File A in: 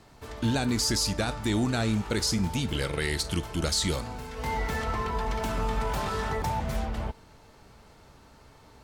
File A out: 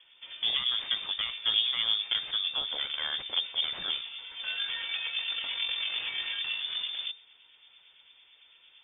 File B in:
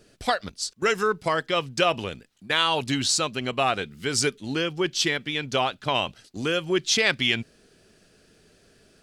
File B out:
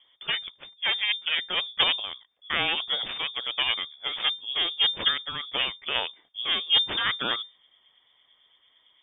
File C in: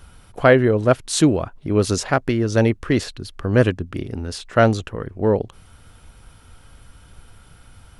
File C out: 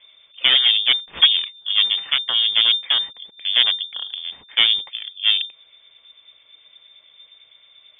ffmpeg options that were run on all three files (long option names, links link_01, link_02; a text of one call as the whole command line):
ffmpeg -i in.wav -filter_complex "[0:a]acrossover=split=2000[link_01][link_02];[link_01]aeval=exprs='val(0)*(1-0.5/2+0.5/2*cos(2*PI*8.9*n/s))':channel_layout=same[link_03];[link_02]aeval=exprs='val(0)*(1-0.5/2-0.5/2*cos(2*PI*8.9*n/s))':channel_layout=same[link_04];[link_03][link_04]amix=inputs=2:normalize=0,equalizer=frequency=340:width_type=o:width=0.3:gain=8,aeval=exprs='0.891*(cos(1*acos(clip(val(0)/0.891,-1,1)))-cos(1*PI/2))+0.158*(cos(8*acos(clip(val(0)/0.891,-1,1)))-cos(8*PI/2))':channel_layout=same,lowpass=frequency=3100:width_type=q:width=0.5098,lowpass=frequency=3100:width_type=q:width=0.6013,lowpass=frequency=3100:width_type=q:width=0.9,lowpass=frequency=3100:width_type=q:width=2.563,afreqshift=-3600,volume=-3dB" out.wav